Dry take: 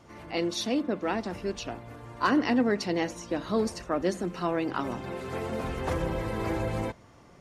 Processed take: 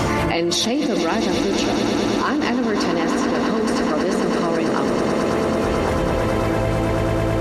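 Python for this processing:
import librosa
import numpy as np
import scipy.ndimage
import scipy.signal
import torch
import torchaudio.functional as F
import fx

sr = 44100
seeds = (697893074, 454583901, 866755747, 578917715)

y = fx.echo_swell(x, sr, ms=109, loudest=8, wet_db=-12)
y = fx.env_flatten(y, sr, amount_pct=100)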